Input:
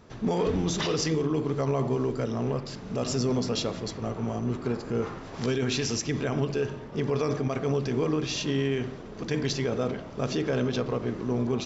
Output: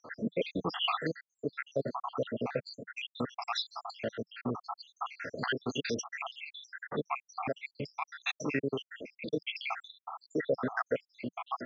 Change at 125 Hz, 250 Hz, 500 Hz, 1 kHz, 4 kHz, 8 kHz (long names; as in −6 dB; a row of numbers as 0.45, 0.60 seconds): −15.5 dB, −10.5 dB, −8.5 dB, −1.0 dB, −4.0 dB, can't be measured